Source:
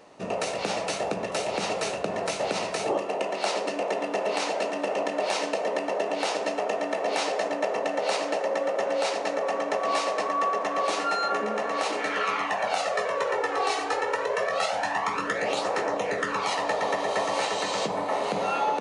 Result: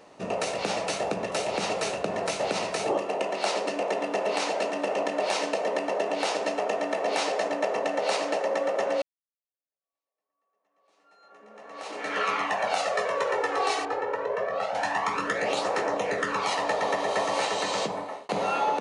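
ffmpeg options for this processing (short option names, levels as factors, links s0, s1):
-filter_complex "[0:a]asettb=1/sr,asplit=3[s0][s1][s2];[s0]atrim=end=13.854[s3];[s1]atrim=start=13.85:end=14.75,asetpts=PTS-STARTPTS,afade=t=in:d=0.004:c=qsin,afade=t=out:st=0.896:d=0.004:c=qsin,lowpass=f=1000:p=1[s4];[s2]atrim=start=14.746[s5];[s3][s4]acrossfade=d=0.004:c1=hsin:c2=qsin[s6];[s6][s5]acrossfade=d=0.004:c1=qsin:c2=hsin,asplit=3[s7][s8][s9];[s7]atrim=end=9.02,asetpts=PTS-STARTPTS,afade=t=out:st=9.016:d=0.004:c=hsin[s10];[s8]atrim=start=9.02:end=18.29,asetpts=PTS-STARTPTS,afade=t=in:d=3.17:c=exp,afade=t=out:st=8.77:d=0.5[s11];[s9]atrim=start=18.29,asetpts=PTS-STARTPTS,afade=t=in:d=0.004:c=hsin[s12];[s10][s11][s12]concat=n=3:v=0:a=1"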